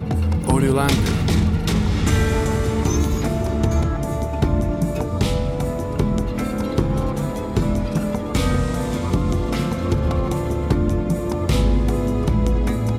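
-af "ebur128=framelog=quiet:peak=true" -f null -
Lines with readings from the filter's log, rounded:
Integrated loudness:
  I:         -20.9 LUFS
  Threshold: -30.9 LUFS
Loudness range:
  LRA:         3.0 LU
  Threshold: -41.3 LUFS
  LRA low:   -22.3 LUFS
  LRA high:  -19.4 LUFS
True peak:
  Peak:       -4.4 dBFS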